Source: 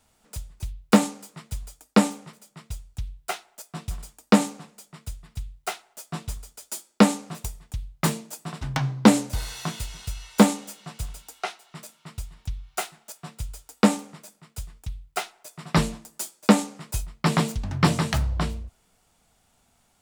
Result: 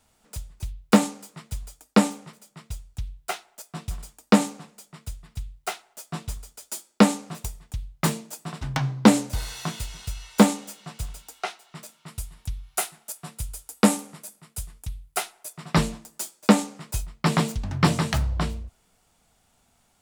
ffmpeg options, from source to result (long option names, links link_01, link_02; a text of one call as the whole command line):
ffmpeg -i in.wav -filter_complex "[0:a]asettb=1/sr,asplit=3[link_01][link_02][link_03];[link_01]atrim=end=12.084[link_04];[link_02]atrim=start=12.08:end=15.53,asetpts=PTS-STARTPTS,afade=type=in:duration=0.004:curve=qsin,afade=type=out:start_time=3.446:duration=0.004:curve=qsin,equalizer=frequency=11000:width_type=o:width=0.78:gain=11[link_05];[link_03]atrim=start=15.526[link_06];[link_04][link_05]acrossfade=duration=0.004:curve1=hsin:curve2=qsin[link_07];[link_07][link_06]acrossfade=duration=0.004:curve1=qsin:curve2=hsin" out.wav